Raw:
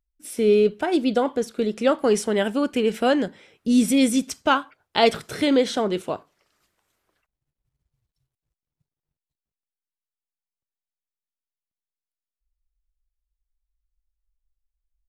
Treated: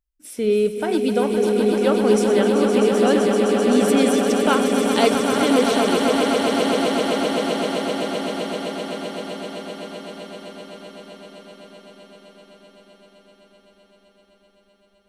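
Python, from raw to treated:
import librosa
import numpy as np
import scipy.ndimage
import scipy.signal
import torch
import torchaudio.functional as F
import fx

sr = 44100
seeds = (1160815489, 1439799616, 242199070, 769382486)

y = fx.reverse_delay_fb(x, sr, ms=449, feedback_pct=76, wet_db=-11)
y = fx.echo_swell(y, sr, ms=129, loudest=8, wet_db=-8.0)
y = y * librosa.db_to_amplitude(-1.5)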